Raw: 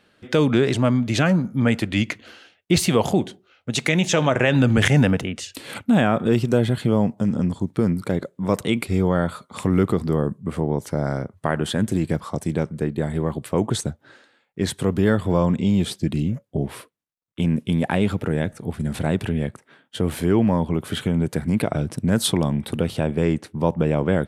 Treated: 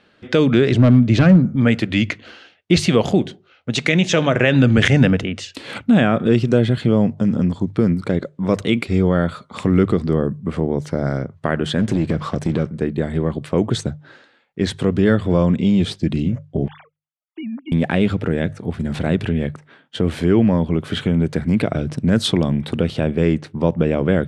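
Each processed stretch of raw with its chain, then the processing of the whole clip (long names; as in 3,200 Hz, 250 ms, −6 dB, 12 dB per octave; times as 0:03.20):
0:00.72–0:01.56: spectral tilt −2 dB per octave + gain into a clipping stage and back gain 9 dB
0:11.79–0:12.67: high-shelf EQ 5,800 Hz −7 dB + downward compressor 3 to 1, threshold −24 dBFS + leveller curve on the samples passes 2
0:16.68–0:17.72: three sine waves on the formant tracks + downward compressor 4 to 1, threshold −32 dBFS
whole clip: low-pass filter 5,300 Hz 12 dB per octave; mains-hum notches 50/100/150 Hz; dynamic equaliser 900 Hz, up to −7 dB, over −40 dBFS, Q 2.1; level +4 dB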